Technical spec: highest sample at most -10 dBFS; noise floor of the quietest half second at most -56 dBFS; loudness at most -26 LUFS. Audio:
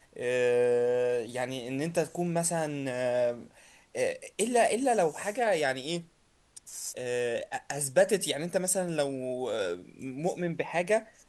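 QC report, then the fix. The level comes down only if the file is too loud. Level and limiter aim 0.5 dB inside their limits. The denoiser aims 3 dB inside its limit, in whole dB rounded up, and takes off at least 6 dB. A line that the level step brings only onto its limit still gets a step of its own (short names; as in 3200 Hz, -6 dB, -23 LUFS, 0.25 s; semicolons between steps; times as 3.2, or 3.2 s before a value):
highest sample -12.0 dBFS: OK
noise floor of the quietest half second -65 dBFS: OK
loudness -29.5 LUFS: OK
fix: none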